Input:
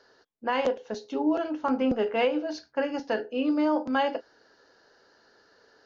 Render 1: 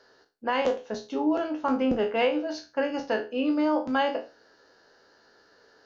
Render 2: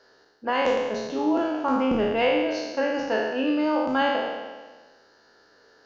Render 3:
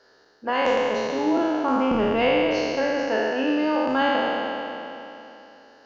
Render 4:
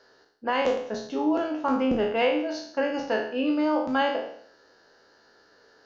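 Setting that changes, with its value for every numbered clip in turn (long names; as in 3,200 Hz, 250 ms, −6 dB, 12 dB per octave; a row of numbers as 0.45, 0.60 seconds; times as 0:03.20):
peak hold with a decay on every bin, RT60: 0.3, 1.4, 3.08, 0.63 seconds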